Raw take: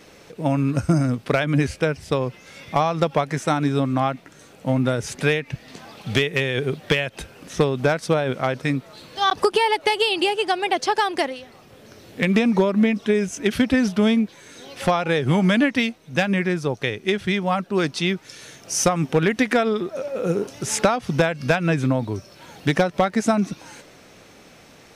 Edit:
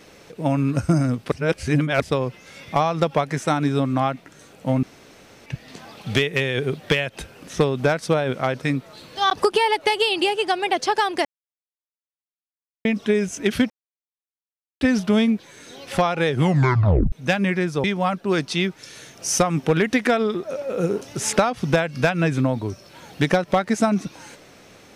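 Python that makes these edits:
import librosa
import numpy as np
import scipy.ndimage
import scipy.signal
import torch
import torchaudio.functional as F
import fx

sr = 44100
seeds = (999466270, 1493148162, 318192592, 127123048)

y = fx.edit(x, sr, fx.reverse_span(start_s=1.32, length_s=0.7),
    fx.room_tone_fill(start_s=4.83, length_s=0.63),
    fx.silence(start_s=11.25, length_s=1.6),
    fx.insert_silence(at_s=13.7, length_s=1.11),
    fx.tape_stop(start_s=15.32, length_s=0.69),
    fx.cut(start_s=16.73, length_s=0.57), tone=tone)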